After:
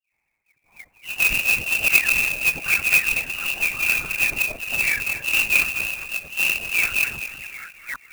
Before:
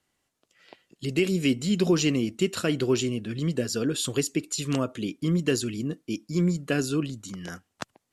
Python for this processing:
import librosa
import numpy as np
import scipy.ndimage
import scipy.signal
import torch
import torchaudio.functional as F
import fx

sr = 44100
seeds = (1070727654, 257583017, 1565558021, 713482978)

y = fx.rattle_buzz(x, sr, strikes_db=-28.0, level_db=-35.0)
y = scipy.signal.sosfilt(scipy.signal.butter(2, 150.0, 'highpass', fs=sr, output='sos'), y)
y = fx.peak_eq(y, sr, hz=800.0, db=12.0, octaves=2.3)
y = fx.dispersion(y, sr, late='highs', ms=139.0, hz=610.0)
y = fx.env_phaser(y, sr, low_hz=220.0, high_hz=2100.0, full_db=-17.0)
y = fx.doubler(y, sr, ms=40.0, db=-4, at=(3.69, 5.7))
y = fx.echo_feedback(y, sr, ms=226, feedback_pct=43, wet_db=-10.5)
y = fx.freq_invert(y, sr, carrier_hz=2900)
y = fx.lpc_vocoder(y, sr, seeds[0], excitation='whisper', order=8)
y = fx.clock_jitter(y, sr, seeds[1], jitter_ms=0.023)